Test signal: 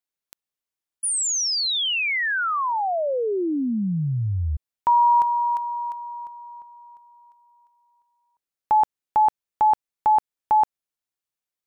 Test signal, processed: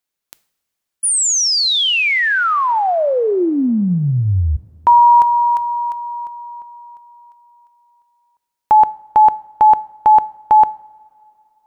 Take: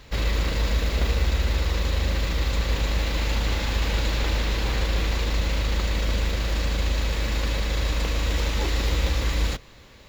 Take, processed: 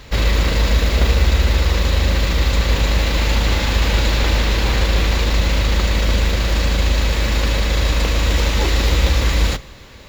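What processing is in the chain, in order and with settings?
coupled-rooms reverb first 0.51 s, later 3 s, from −18 dB, DRR 17 dB
level +8 dB

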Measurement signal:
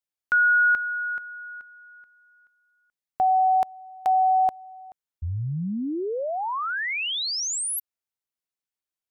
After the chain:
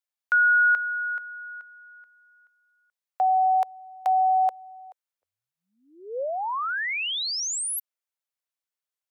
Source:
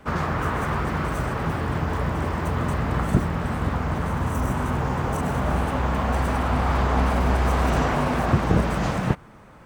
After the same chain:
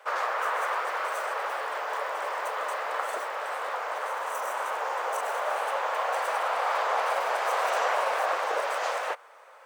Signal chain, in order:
elliptic high-pass filter 510 Hz, stop band 70 dB

